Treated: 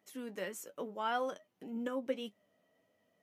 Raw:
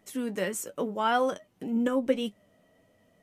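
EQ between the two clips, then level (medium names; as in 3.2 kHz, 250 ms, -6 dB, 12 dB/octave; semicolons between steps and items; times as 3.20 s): high-pass 290 Hz 6 dB/octave; peaking EQ 8.6 kHz -6 dB 0.44 oct; -8.5 dB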